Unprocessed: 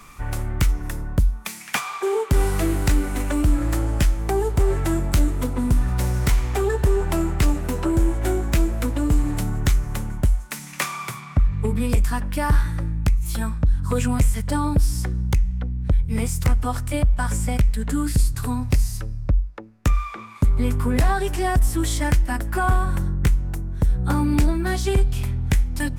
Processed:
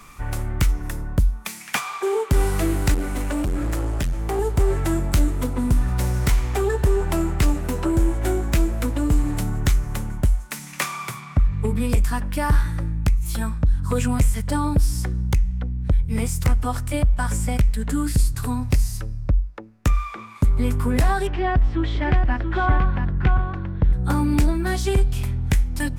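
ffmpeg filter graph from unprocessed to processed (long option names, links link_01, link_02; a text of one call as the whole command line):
ffmpeg -i in.wav -filter_complex "[0:a]asettb=1/sr,asplit=3[link_01][link_02][link_03];[link_01]atrim=end=2.944[link_04];[link_02]atrim=start=2.94:end=4.39,asetpts=PTS-STARTPTS,afade=type=in:duration=0.004:curve=qsin,afade=type=out:start_time=1.446:duration=0.004:curve=qsin,highshelf=frequency=8900:gain=-2,volume=20dB,asoftclip=hard,volume=-20dB[link_05];[link_03]atrim=start=4.386[link_06];[link_04][link_05]acrossfade=duration=0.004:curve1=hsin:curve2=qsin[link_07];[link_07][link_06]acrossfade=duration=0.004:curve1=qsin:curve2=hsin,asettb=1/sr,asplit=3[link_08][link_09][link_10];[link_08]atrim=end=21.274[link_11];[link_09]atrim=start=21.27:end=23.93,asetpts=PTS-STARTPTS,afade=type=in:duration=0.004:curve=qsin,afade=type=out:start_time=2.656:duration=0.004:curve=qsin,lowpass=frequency=3400:width=0.5412,lowpass=frequency=3400:width=1.3066,aecho=1:1:680:0.473,atrim=end_sample=117306[link_12];[link_10]atrim=start=23.926[link_13];[link_11][link_12]acrossfade=duration=0.004:curve1=hsin:curve2=qsin[link_14];[link_14][link_13]acrossfade=duration=0.004:curve1=qsin:curve2=hsin" out.wav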